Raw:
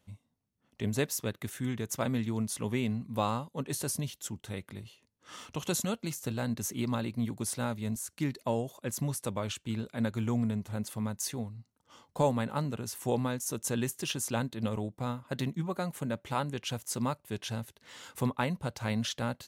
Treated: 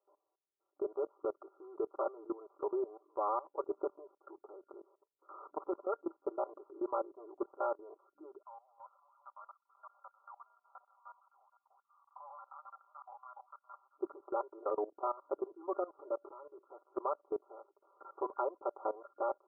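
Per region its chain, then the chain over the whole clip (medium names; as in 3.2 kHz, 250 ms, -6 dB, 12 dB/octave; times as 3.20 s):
8.42–13.98 s: chunks repeated in reverse 242 ms, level -6 dB + Bessel high-pass 1.6 kHz, order 8
16.28–16.69 s: compression 4:1, threshold -37 dBFS + distance through air 240 m + comb of notches 760 Hz
whole clip: FFT band-pass 300–1400 Hz; comb 5.1 ms, depth 91%; level held to a coarse grid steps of 18 dB; trim +3 dB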